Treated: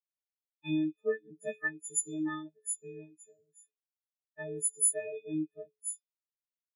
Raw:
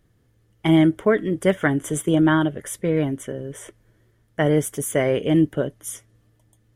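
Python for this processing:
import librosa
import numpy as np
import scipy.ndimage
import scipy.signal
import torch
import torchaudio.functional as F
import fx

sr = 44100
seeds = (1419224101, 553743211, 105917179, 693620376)

y = fx.freq_snap(x, sr, grid_st=6)
y = fx.comb_fb(y, sr, f0_hz=86.0, decay_s=0.81, harmonics='all', damping=0.0, mix_pct=80)
y = fx.spectral_expand(y, sr, expansion=2.5)
y = y * librosa.db_to_amplitude(-3.0)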